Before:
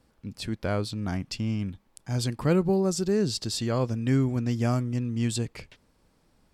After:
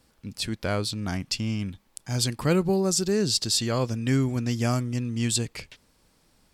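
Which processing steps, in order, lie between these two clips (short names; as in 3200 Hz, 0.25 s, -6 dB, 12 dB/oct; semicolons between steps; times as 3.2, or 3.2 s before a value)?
high shelf 2100 Hz +9 dB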